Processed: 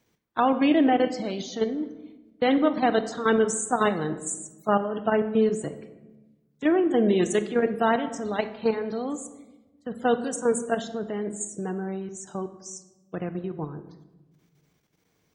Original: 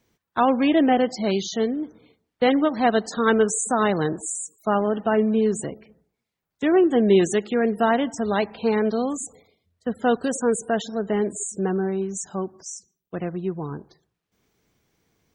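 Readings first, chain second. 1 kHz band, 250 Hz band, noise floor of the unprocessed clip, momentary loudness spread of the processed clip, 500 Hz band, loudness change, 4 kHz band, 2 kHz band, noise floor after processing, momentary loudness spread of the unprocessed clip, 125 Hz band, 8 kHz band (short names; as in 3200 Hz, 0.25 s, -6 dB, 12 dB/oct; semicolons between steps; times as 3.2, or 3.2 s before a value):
-2.5 dB, -3.0 dB, -83 dBFS, 15 LU, -3.0 dB, -3.0 dB, -3.5 dB, -3.0 dB, -70 dBFS, 14 LU, -4.0 dB, -4.0 dB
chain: HPF 63 Hz 6 dB/oct; level quantiser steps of 10 dB; shoebox room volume 590 m³, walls mixed, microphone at 0.47 m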